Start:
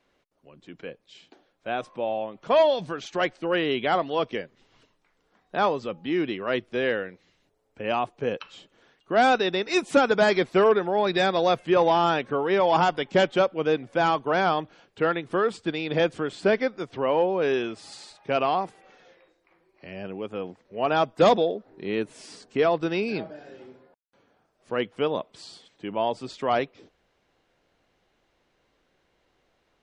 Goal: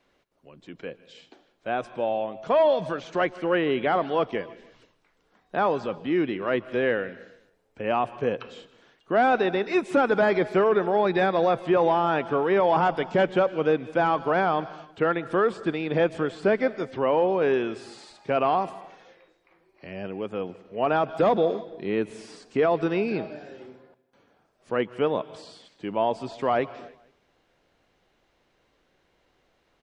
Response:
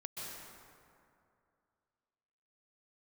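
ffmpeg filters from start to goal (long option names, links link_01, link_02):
-filter_complex "[0:a]asplit=2[link_01][link_02];[1:a]atrim=start_sample=2205,afade=type=out:start_time=0.38:duration=0.01,atrim=end_sample=17199,lowpass=7100[link_03];[link_02][link_03]afir=irnorm=-1:irlink=0,volume=-16dB[link_04];[link_01][link_04]amix=inputs=2:normalize=0,acrossover=split=2500[link_05][link_06];[link_06]acompressor=threshold=-48dB:ratio=4:attack=1:release=60[link_07];[link_05][link_07]amix=inputs=2:normalize=0,alimiter=limit=-14dB:level=0:latency=1:release=14,aecho=1:1:157|314|471:0.0708|0.0319|0.0143,volume=1dB"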